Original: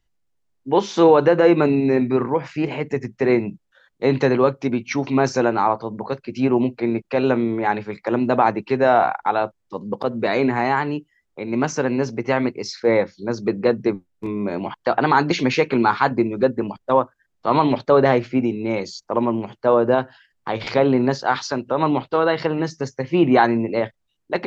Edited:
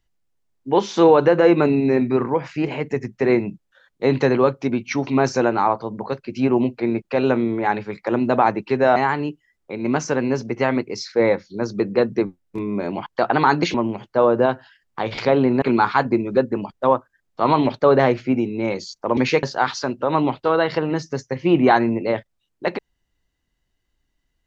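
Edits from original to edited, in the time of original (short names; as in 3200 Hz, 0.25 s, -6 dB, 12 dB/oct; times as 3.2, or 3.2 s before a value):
8.96–10.64 cut
15.42–15.68 swap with 19.23–21.11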